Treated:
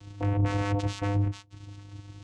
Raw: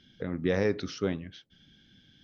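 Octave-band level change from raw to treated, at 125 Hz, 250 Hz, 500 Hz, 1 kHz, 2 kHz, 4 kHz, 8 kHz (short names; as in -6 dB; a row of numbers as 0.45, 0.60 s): +11.0 dB, +0.5 dB, -6.0 dB, +10.0 dB, -1.0 dB, 0.0 dB, n/a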